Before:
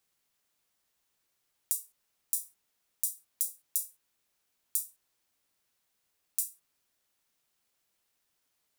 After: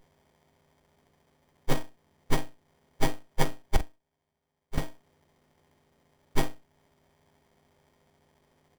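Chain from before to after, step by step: frequency quantiser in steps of 3 st; 3.76–4.78 passive tone stack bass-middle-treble 6-0-2; doubler 45 ms -11 dB; in parallel at +0.5 dB: compressor, threshold -37 dBFS, peak gain reduction 21 dB; on the sum: running maximum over 33 samples

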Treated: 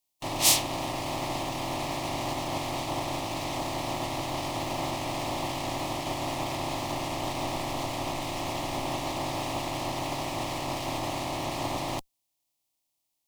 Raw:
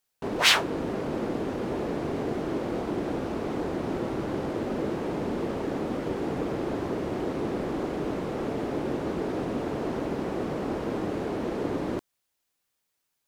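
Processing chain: spectral limiter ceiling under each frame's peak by 24 dB; 6.92–8.84 frequency shift -41 Hz; in parallel at -8.5 dB: Schmitt trigger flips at -31 dBFS; on the sum: fixed phaser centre 300 Hz, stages 8

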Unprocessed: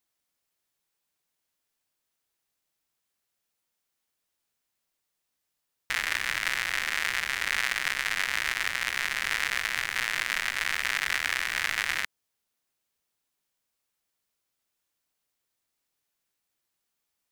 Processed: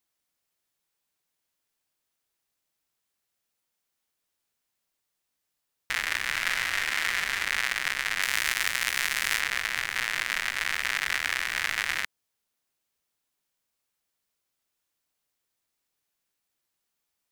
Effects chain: 6.29–7.44 doubler 41 ms -5 dB; 8.22–9.4 high shelf 5000 Hz +9 dB

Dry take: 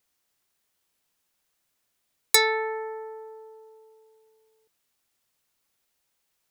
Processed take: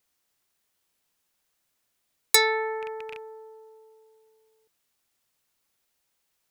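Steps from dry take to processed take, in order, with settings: rattling part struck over -54 dBFS, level -26 dBFS

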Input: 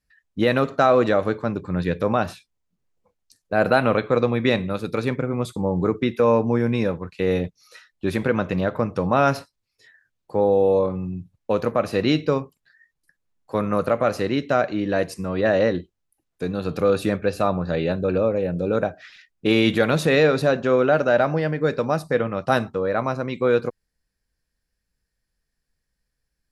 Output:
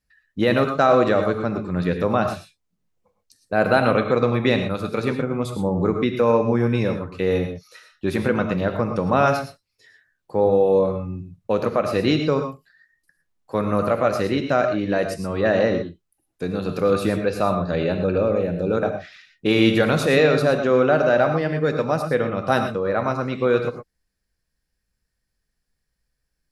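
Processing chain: non-linear reverb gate 0.14 s rising, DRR 6 dB

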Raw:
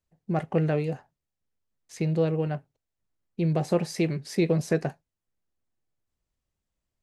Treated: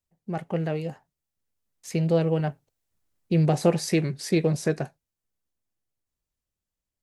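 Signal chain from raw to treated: Doppler pass-by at 3.06, 12 m/s, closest 14 m; high shelf 6100 Hz +7 dB; Doppler distortion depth 0.11 ms; gain +4.5 dB

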